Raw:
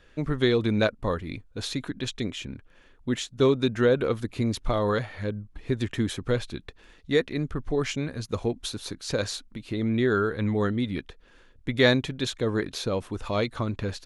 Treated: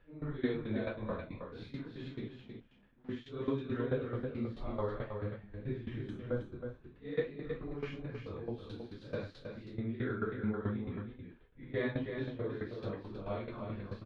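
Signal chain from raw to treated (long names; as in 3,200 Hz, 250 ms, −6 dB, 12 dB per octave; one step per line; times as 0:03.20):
random phases in long frames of 200 ms
0:02.28–0:03.09: tube saturation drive 45 dB, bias 0.4
0:06.10–0:06.83: gain on a spectral selection 1,600–5,700 Hz −11 dB
0:10.81–0:12.44: high-shelf EQ 4,000 Hz −10.5 dB
shaped tremolo saw down 4.6 Hz, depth 85%
high-frequency loss of the air 380 metres
single-tap delay 319 ms −7 dB
level −7.5 dB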